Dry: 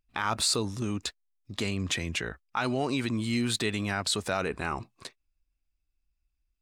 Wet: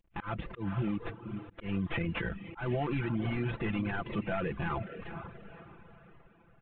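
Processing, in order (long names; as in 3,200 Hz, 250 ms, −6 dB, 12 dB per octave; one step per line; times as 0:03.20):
variable-slope delta modulation 16 kbit/s
low-shelf EQ 130 Hz +11.5 dB
comb filter 5.9 ms, depth 63%
feedback delay with all-pass diffusion 495 ms, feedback 42%, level −11.5 dB
brickwall limiter −22.5 dBFS, peak gain reduction 6.5 dB
volume swells 143 ms
reverb reduction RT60 0.69 s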